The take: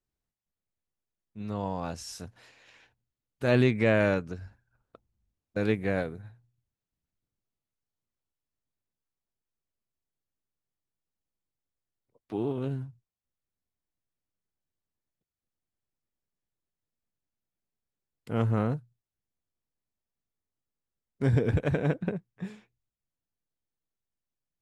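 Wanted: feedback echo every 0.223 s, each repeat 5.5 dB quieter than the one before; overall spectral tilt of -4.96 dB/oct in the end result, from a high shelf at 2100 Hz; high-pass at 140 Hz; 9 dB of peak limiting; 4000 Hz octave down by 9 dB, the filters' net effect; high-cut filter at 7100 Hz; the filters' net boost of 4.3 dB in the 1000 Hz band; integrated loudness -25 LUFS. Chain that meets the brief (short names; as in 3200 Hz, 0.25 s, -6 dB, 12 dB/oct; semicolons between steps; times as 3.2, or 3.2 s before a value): HPF 140 Hz; LPF 7100 Hz; bell 1000 Hz +7 dB; high shelf 2100 Hz -3.5 dB; bell 4000 Hz -9 dB; limiter -17.5 dBFS; feedback echo 0.223 s, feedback 53%, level -5.5 dB; gain +7.5 dB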